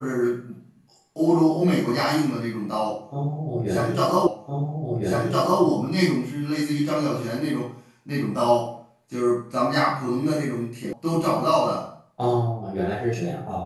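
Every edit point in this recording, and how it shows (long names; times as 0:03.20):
0:04.27: the same again, the last 1.36 s
0:10.93: cut off before it has died away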